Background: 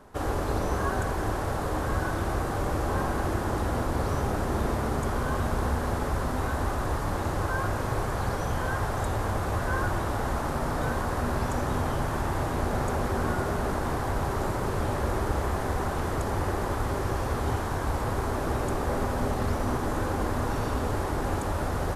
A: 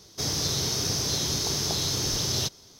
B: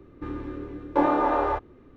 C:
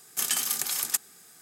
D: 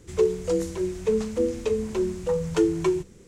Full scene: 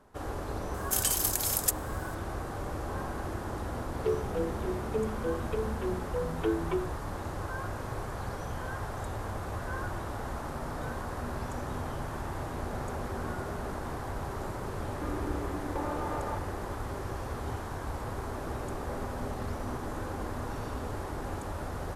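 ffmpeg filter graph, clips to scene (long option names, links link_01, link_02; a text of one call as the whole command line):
ffmpeg -i bed.wav -i cue0.wav -i cue1.wav -i cue2.wav -i cue3.wav -filter_complex "[0:a]volume=-8dB[link_01];[3:a]highshelf=frequency=5500:gain=8[link_02];[4:a]aresample=8000,aresample=44100[link_03];[2:a]acompressor=threshold=-33dB:ratio=6:attack=3.2:release=140:knee=1:detection=peak[link_04];[link_02]atrim=end=1.41,asetpts=PTS-STARTPTS,volume=-7dB,afade=type=in:duration=0.004:curve=hsin,afade=type=out:start_time=1.406:duration=0.004:curve=hsin,adelay=740[link_05];[link_03]atrim=end=3.27,asetpts=PTS-STARTPTS,volume=-8.5dB,afade=type=in:duration=0.004:curve=hsin,afade=type=out:start_time=3.266:duration=0.004:curve=hsin,adelay=3870[link_06];[link_04]atrim=end=1.96,asetpts=PTS-STARTPTS,afade=type=in:duration=0.004:curve=hsin,afade=type=out:start_time=1.956:duration=0.004:curve=hsin,adelay=14800[link_07];[link_01][link_05][link_06][link_07]amix=inputs=4:normalize=0" out.wav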